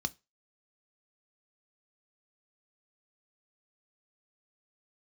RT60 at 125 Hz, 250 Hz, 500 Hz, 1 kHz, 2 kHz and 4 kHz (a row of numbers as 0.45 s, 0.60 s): 0.25 s, 0.20 s, 0.25 s, 0.25 s, 0.25 s, 0.25 s